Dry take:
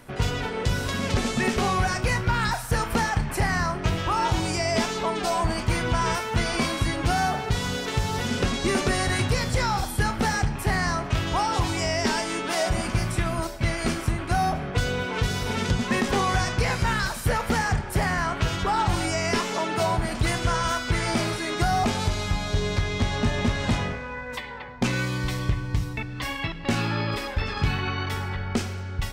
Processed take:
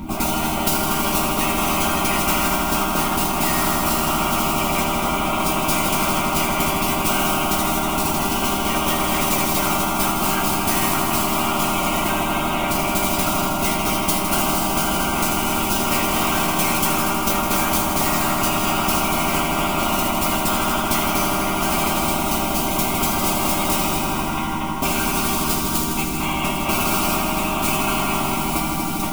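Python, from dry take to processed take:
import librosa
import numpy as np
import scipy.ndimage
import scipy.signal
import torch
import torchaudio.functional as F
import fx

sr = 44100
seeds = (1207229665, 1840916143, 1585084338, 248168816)

y = fx.cvsd(x, sr, bps=16000)
y = scipy.signal.sosfilt(scipy.signal.butter(2, 82.0, 'highpass', fs=sr, output='sos'), y)
y = fx.low_shelf_res(y, sr, hz=260.0, db=14.0, q=3.0)
y = fx.whisperise(y, sr, seeds[0])
y = fx.mod_noise(y, sr, seeds[1], snr_db=30)
y = fx.fixed_phaser(y, sr, hz=470.0, stages=6)
y = fx.resonator_bank(y, sr, root=51, chord='major', decay_s=0.24)
y = fx.echo_heads(y, sr, ms=80, heads='all three', feedback_pct=67, wet_db=-10.5)
y = fx.spectral_comp(y, sr, ratio=10.0)
y = F.gain(torch.from_numpy(y), 5.5).numpy()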